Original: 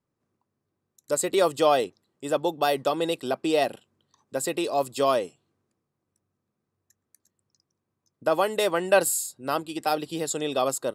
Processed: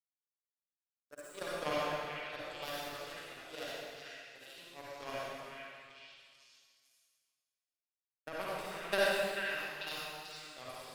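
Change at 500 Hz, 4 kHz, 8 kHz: −15.5, −8.5, −20.5 decibels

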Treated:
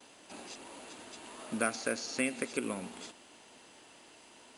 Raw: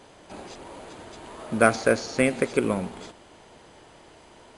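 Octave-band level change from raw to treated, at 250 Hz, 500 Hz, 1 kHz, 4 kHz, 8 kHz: −10.5, −14.0, −12.5, −4.5, −3.0 decibels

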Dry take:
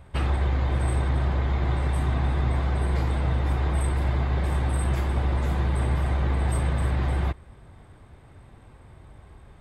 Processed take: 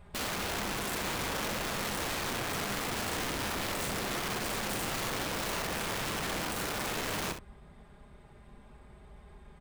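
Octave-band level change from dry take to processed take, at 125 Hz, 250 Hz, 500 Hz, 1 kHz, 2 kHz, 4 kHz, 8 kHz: −19.5, −6.0, −3.0, −2.5, +1.5, +7.5, +8.0 decibels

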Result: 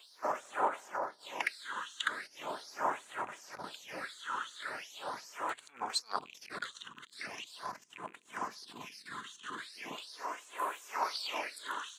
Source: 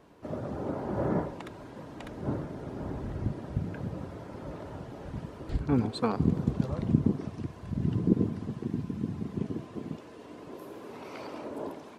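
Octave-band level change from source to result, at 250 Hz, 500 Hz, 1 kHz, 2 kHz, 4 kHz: −23.0, −7.5, +5.5, +10.0, +9.5 decibels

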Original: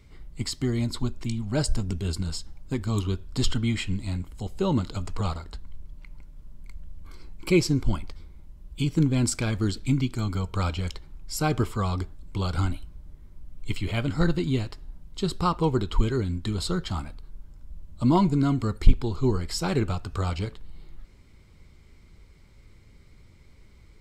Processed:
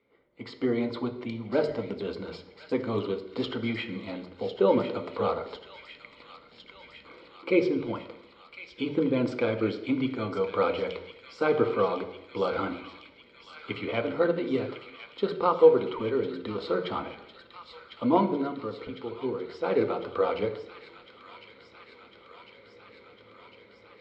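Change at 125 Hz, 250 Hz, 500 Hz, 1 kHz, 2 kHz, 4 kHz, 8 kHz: −14.0 dB, −3.0 dB, +6.5 dB, +1.0 dB, +0.5 dB, −5.5 dB, below −25 dB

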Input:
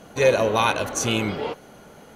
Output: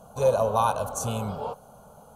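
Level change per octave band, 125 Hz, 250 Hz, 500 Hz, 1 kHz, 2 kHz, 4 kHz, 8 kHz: −1.5, −8.5, −3.5, −1.0, −16.0, −14.0, −6.5 decibels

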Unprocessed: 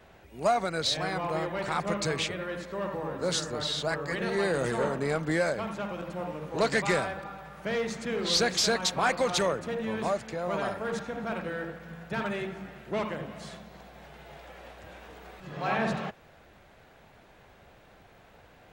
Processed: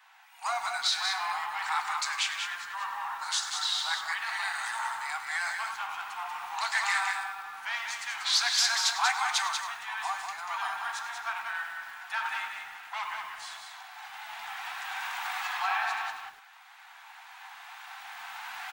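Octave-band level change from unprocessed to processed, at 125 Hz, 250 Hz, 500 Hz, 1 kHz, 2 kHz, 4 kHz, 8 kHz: below −35 dB, below −35 dB, −21.0 dB, +1.5 dB, +3.5 dB, +2.5 dB, +2.5 dB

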